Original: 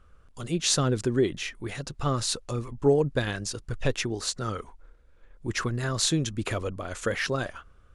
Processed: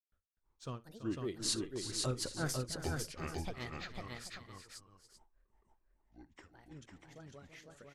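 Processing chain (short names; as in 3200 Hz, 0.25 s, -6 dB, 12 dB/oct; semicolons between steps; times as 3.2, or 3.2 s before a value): Doppler pass-by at 2.24, 35 m/s, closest 13 m; grains 0.237 s, grains 5.1/s, spray 0.878 s, pitch spread up and down by 7 st; tapped delay 57/334/378/501/785/888 ms -19/-11.5/-14/-3/-16/-14 dB; gain -3.5 dB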